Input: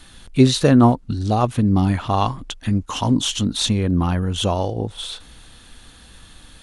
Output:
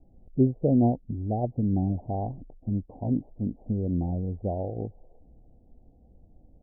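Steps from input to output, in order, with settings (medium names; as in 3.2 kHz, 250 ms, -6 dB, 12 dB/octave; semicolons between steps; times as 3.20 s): steep low-pass 760 Hz 72 dB/octave; trim -8.5 dB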